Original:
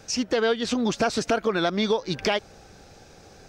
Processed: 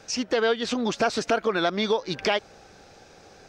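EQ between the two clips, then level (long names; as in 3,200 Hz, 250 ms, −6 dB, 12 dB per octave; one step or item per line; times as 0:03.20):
low-shelf EQ 220 Hz −9 dB
high-shelf EQ 8,200 Hz −10 dB
+1.5 dB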